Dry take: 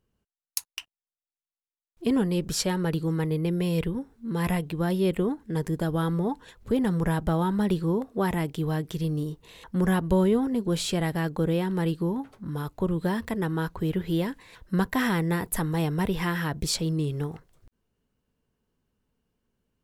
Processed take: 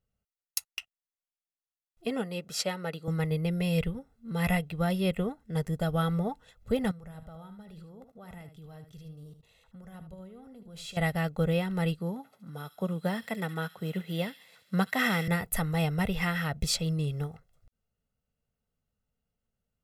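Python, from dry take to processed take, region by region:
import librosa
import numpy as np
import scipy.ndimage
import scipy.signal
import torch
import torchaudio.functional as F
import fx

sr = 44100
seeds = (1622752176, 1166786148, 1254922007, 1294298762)

y = fx.chain(x, sr, fx.highpass(hz=250.0, slope=12),
    fx.high_shelf(hz=5000.0, db=-3.5), at=(2.05, 3.08))
y = fx.chain(y, sr, fx.level_steps(step_db=19),
    fx.echo_single(ms=75, db=-10.0), at=(6.91, 10.97))
y = fx.chain(y, sr, fx.highpass(hz=160.0, slope=24),
    fx.echo_wet_highpass(ms=70, feedback_pct=69, hz=2900.0, wet_db=-6), at=(11.99, 15.28))
y = y + 0.69 * np.pad(y, (int(1.5 * sr / 1000.0), 0))[:len(y)]
y = fx.dynamic_eq(y, sr, hz=2400.0, q=1.7, threshold_db=-46.0, ratio=4.0, max_db=5)
y = fx.upward_expand(y, sr, threshold_db=-37.0, expansion=1.5)
y = F.gain(torch.from_numpy(y), -1.5).numpy()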